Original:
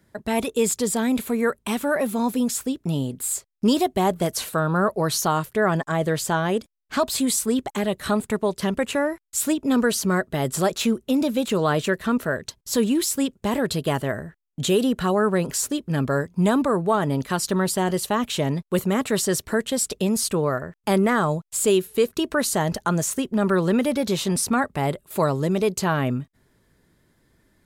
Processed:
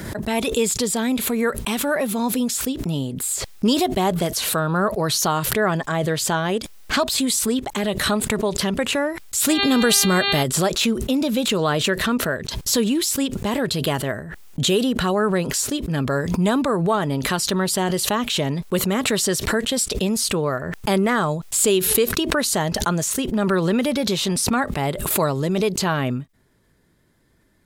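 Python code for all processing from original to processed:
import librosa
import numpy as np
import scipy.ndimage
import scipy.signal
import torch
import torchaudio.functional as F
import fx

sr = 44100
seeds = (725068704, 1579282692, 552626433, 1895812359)

y = fx.high_shelf(x, sr, hz=5500.0, db=7.0, at=(9.48, 10.42), fade=0.02)
y = fx.dmg_buzz(y, sr, base_hz=400.0, harmonics=11, level_db=-35.0, tilt_db=-1, odd_only=False, at=(9.48, 10.42), fade=0.02)
y = fx.env_flatten(y, sr, amount_pct=50, at=(9.48, 10.42), fade=0.02)
y = fx.dynamic_eq(y, sr, hz=3700.0, q=0.87, threshold_db=-43.0, ratio=4.0, max_db=5)
y = fx.pre_swell(y, sr, db_per_s=39.0)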